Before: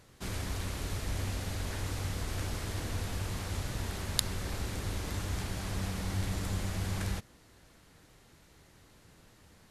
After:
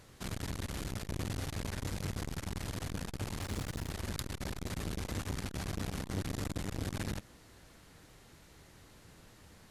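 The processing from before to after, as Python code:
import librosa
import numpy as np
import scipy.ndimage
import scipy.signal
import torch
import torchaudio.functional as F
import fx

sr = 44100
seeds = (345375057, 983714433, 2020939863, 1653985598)

y = fx.mod_noise(x, sr, seeds[0], snr_db=24, at=(3.39, 3.89), fade=0.02)
y = fx.transformer_sat(y, sr, knee_hz=2800.0)
y = y * 10.0 ** (2.0 / 20.0)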